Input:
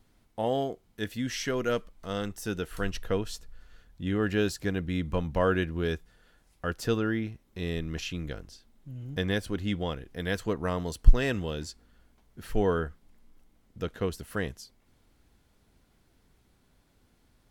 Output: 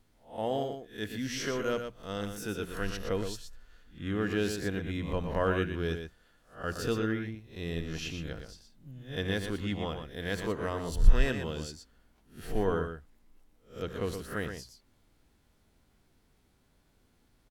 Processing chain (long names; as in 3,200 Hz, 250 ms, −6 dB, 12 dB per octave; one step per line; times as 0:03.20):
peak hold with a rise ahead of every peak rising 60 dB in 0.34 s
mains-hum notches 60/120/180 Hz
on a send: single-tap delay 119 ms −7.5 dB
on the sum: level −4 dB